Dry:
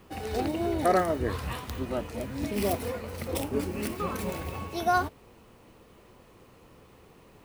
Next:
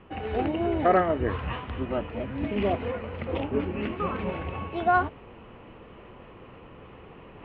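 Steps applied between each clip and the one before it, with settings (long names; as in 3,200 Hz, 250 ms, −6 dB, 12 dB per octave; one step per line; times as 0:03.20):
elliptic low-pass filter 3,000 Hz, stop band 70 dB
reversed playback
upward compression, threshold −42 dBFS
reversed playback
level +3 dB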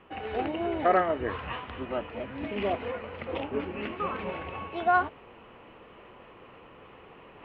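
low-shelf EQ 280 Hz −11 dB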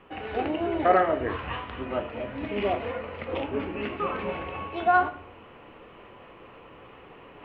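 convolution reverb RT60 0.55 s, pre-delay 7 ms, DRR 7 dB
level +1.5 dB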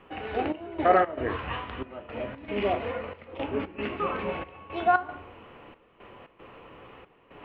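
gate pattern "xxxx..xx.x" 115 BPM −12 dB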